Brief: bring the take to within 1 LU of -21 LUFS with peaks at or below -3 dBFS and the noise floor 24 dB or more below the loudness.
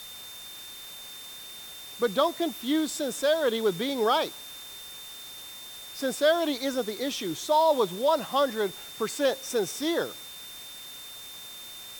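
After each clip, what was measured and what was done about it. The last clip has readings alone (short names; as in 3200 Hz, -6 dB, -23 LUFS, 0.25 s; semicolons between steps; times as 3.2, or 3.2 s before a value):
steady tone 3600 Hz; tone level -43 dBFS; noise floor -43 dBFS; noise floor target -51 dBFS; loudness -27.0 LUFS; peak -10.5 dBFS; loudness target -21.0 LUFS
-> notch 3600 Hz, Q 30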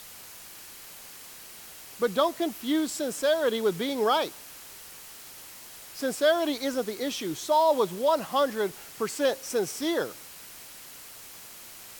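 steady tone none; noise floor -46 dBFS; noise floor target -51 dBFS
-> noise print and reduce 6 dB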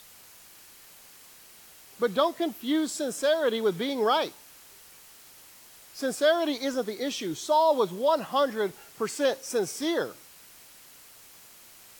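noise floor -52 dBFS; loudness -27.5 LUFS; peak -11.0 dBFS; loudness target -21.0 LUFS
-> gain +6.5 dB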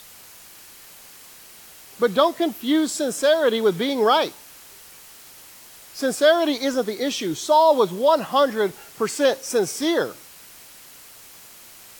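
loudness -21.0 LUFS; peak -4.5 dBFS; noise floor -46 dBFS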